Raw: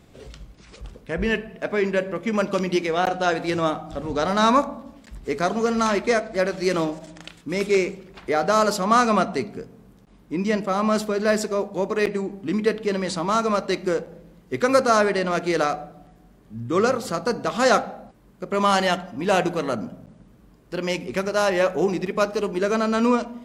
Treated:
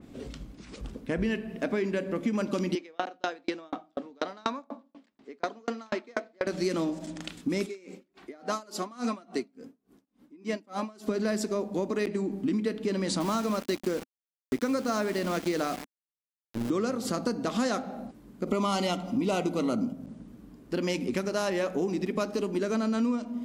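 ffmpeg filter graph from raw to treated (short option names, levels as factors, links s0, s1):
-filter_complex "[0:a]asettb=1/sr,asplit=3[s0][s1][s2];[s0]atrim=end=2.754[s3];[s1]atrim=start=2.75:end=6.47,asetpts=PTS-STARTPTS,afade=t=in:d=0.004:c=qsin,afade=t=out:st=3.716:d=0.004:c=qsin,highpass=380,lowpass=4600,aeval=exprs='val(0)*pow(10,-39*if(lt(mod(4.1*n/s,1),2*abs(4.1)/1000),1-mod(4.1*n/s,1)/(2*abs(4.1)/1000),(mod(4.1*n/s,1)-2*abs(4.1)/1000)/(1-2*abs(4.1)/1000))/20)':c=same[s4];[s2]atrim=start=6.466[s5];[s3][s4]acrossfade=d=0.004:c1=hsin:c2=qsin[s6];[s6][s5]acrossfade=d=0.004:c1=qsin:c2=hsin,asettb=1/sr,asplit=3[s7][s8][s9];[s7]atrim=end=7.664[s10];[s8]atrim=start=7.66:end=11.08,asetpts=PTS-STARTPTS,afade=t=in:d=0.004:c=qsin,afade=t=out:st=3.416:d=0.004:c=qsin,highpass=f=270:p=1,flanger=delay=2.6:depth=1.3:regen=43:speed=1.8:shape=sinusoidal,aeval=exprs='val(0)*pow(10,-29*(0.5-0.5*cos(2*PI*3.5*n/s))/20)':c=same[s11];[s9]atrim=start=11.076[s12];[s10][s11]acrossfade=d=0.004:c1=hsin:c2=qsin[s13];[s13][s12]acrossfade=d=0.004:c1=qsin:c2=hsin,asettb=1/sr,asplit=3[s14][s15][s16];[s14]atrim=end=13.204[s17];[s15]atrim=start=13.2:end=16.7,asetpts=PTS-STARTPTS,afade=t=in:d=0.004:c=qsin,afade=t=out:st=3.496:d=0.004:c=qsin,lowpass=8600,aeval=exprs='val(0)*gte(abs(val(0)),0.0316)':c=same[s18];[s16]atrim=start=16.696[s19];[s17][s18]acrossfade=d=0.004:c1=hsin:c2=qsin[s20];[s20][s19]acrossfade=d=0.004:c1=qsin:c2=hsin,asettb=1/sr,asplit=3[s21][s22][s23];[s21]atrim=end=18.474[s24];[s22]atrim=start=18.47:end=19.93,asetpts=PTS-STARTPTS,afade=t=in:d=0.004:c=qsin,afade=t=out:st=1.456:d=0.004:c=qsin,acontrast=50,asuperstop=centerf=1700:order=8:qfactor=4.4[s25];[s23]atrim=start=19.926[s26];[s24][s25]acrossfade=d=0.004:c1=hsin:c2=qsin[s27];[s27][s26]acrossfade=d=0.004:c1=qsin:c2=hsin,equalizer=f=260:t=o:w=0.82:g=12,acompressor=threshold=0.0631:ratio=6,adynamicequalizer=threshold=0.00447:dfrequency=3000:dqfactor=0.7:tfrequency=3000:tqfactor=0.7:attack=5:release=100:ratio=0.375:range=2.5:mode=boostabove:tftype=highshelf,volume=0.794"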